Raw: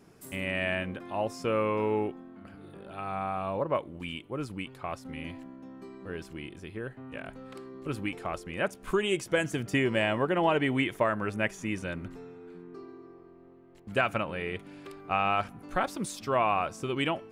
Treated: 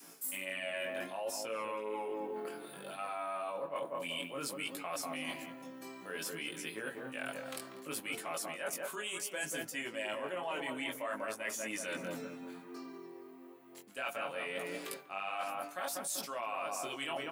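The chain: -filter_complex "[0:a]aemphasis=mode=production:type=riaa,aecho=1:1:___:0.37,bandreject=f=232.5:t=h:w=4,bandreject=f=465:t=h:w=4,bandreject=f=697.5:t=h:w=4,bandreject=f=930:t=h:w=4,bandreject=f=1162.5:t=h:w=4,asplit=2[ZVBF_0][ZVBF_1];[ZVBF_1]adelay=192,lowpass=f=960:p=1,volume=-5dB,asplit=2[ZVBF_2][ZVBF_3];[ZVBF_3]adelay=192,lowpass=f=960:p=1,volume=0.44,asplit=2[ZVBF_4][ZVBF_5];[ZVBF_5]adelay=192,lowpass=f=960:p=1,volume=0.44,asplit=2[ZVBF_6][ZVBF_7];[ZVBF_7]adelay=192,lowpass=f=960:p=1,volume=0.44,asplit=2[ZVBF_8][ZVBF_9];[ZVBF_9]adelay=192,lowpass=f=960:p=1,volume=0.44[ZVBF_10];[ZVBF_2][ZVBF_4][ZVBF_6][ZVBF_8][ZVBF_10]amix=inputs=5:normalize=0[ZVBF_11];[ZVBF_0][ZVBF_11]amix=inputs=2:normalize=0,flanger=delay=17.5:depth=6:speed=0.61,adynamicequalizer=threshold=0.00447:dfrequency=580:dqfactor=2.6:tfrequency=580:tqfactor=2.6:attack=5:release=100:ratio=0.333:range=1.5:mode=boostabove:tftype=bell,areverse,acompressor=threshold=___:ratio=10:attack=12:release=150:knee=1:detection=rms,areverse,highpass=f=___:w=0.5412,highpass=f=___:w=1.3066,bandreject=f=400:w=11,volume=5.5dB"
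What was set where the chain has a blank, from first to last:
7.3, -41dB, 160, 160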